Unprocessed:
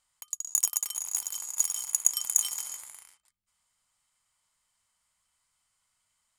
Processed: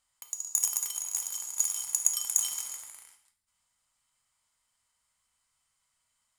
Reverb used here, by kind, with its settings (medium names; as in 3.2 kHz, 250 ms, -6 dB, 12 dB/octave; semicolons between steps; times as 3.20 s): gated-style reverb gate 240 ms falling, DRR 5.5 dB; trim -2 dB